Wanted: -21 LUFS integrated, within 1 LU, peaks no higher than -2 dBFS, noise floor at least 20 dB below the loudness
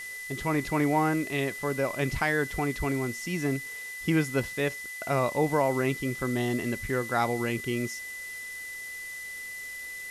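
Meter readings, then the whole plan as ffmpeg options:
steady tone 2 kHz; tone level -37 dBFS; noise floor -39 dBFS; noise floor target -50 dBFS; loudness -29.5 LUFS; peak level -12.5 dBFS; loudness target -21.0 LUFS
-> -af "bandreject=f=2000:w=30"
-af "afftdn=nr=11:nf=-39"
-af "volume=2.66"

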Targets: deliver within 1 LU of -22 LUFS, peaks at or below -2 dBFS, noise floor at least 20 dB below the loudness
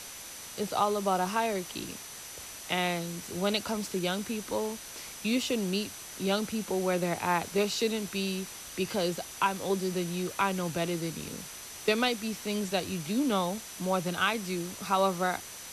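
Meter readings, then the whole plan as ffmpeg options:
steady tone 6 kHz; tone level -49 dBFS; noise floor -44 dBFS; noise floor target -51 dBFS; loudness -31.0 LUFS; peak level -13.5 dBFS; loudness target -22.0 LUFS
-> -af "bandreject=f=6000:w=30"
-af "afftdn=nr=7:nf=-44"
-af "volume=2.82"

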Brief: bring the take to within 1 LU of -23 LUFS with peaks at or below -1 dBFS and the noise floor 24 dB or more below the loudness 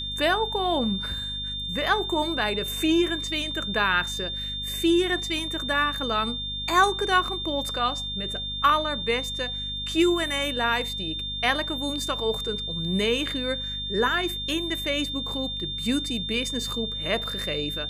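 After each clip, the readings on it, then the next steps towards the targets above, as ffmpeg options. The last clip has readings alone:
hum 50 Hz; highest harmonic 250 Hz; hum level -36 dBFS; steady tone 3.6 kHz; tone level -30 dBFS; loudness -25.5 LUFS; peak level -7.5 dBFS; loudness target -23.0 LUFS
-> -af "bandreject=f=50:t=h:w=6,bandreject=f=100:t=h:w=6,bandreject=f=150:t=h:w=6,bandreject=f=200:t=h:w=6,bandreject=f=250:t=h:w=6"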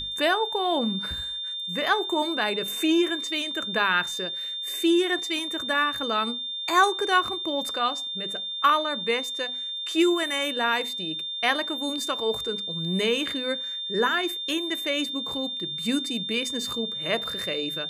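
hum not found; steady tone 3.6 kHz; tone level -30 dBFS
-> -af "bandreject=f=3600:w=30"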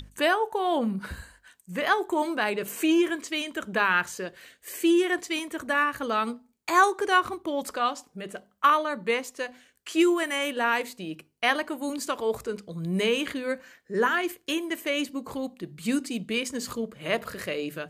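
steady tone not found; loudness -27.0 LUFS; peak level -8.0 dBFS; loudness target -23.0 LUFS
-> -af "volume=1.58"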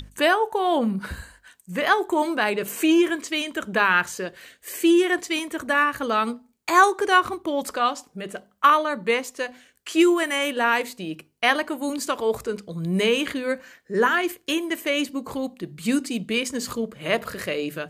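loudness -23.0 LUFS; peak level -4.0 dBFS; noise floor -62 dBFS

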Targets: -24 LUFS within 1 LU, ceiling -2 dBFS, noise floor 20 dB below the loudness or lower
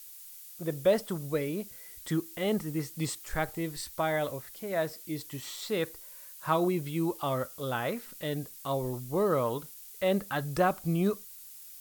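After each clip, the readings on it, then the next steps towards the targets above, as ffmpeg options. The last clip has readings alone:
noise floor -48 dBFS; noise floor target -52 dBFS; loudness -32.0 LUFS; peak level -13.5 dBFS; loudness target -24.0 LUFS
-> -af "afftdn=nr=6:nf=-48"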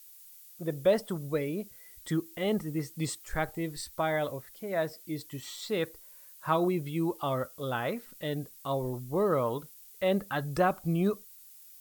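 noise floor -53 dBFS; loudness -32.0 LUFS; peak level -13.5 dBFS; loudness target -24.0 LUFS
-> -af "volume=2.51"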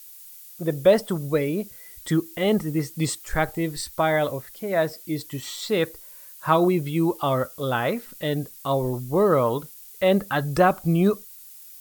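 loudness -24.0 LUFS; peak level -5.5 dBFS; noise floor -45 dBFS

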